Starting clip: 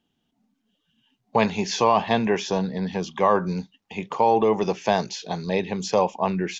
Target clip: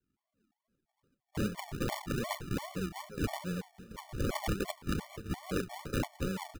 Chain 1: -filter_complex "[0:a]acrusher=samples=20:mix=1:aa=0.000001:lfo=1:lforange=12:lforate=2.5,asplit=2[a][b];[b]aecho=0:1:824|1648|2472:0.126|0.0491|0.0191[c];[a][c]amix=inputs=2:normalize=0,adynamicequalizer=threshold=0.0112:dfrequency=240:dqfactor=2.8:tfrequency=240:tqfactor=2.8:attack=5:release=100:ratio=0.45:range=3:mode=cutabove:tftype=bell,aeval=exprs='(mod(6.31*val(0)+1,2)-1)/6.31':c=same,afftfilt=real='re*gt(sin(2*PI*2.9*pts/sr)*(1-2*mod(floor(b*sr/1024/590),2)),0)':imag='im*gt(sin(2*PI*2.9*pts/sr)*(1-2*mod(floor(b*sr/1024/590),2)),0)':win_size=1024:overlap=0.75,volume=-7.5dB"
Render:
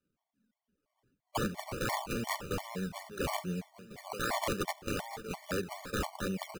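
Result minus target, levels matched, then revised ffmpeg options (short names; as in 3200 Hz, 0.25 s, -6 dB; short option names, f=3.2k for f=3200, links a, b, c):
decimation with a swept rate: distortion -19 dB
-filter_complex "[0:a]acrusher=samples=67:mix=1:aa=0.000001:lfo=1:lforange=40.2:lforate=2.5,asplit=2[a][b];[b]aecho=0:1:824|1648|2472:0.126|0.0491|0.0191[c];[a][c]amix=inputs=2:normalize=0,adynamicequalizer=threshold=0.0112:dfrequency=240:dqfactor=2.8:tfrequency=240:tqfactor=2.8:attack=5:release=100:ratio=0.45:range=3:mode=cutabove:tftype=bell,aeval=exprs='(mod(6.31*val(0)+1,2)-1)/6.31':c=same,afftfilt=real='re*gt(sin(2*PI*2.9*pts/sr)*(1-2*mod(floor(b*sr/1024/590),2)),0)':imag='im*gt(sin(2*PI*2.9*pts/sr)*(1-2*mod(floor(b*sr/1024/590),2)),0)':win_size=1024:overlap=0.75,volume=-7.5dB"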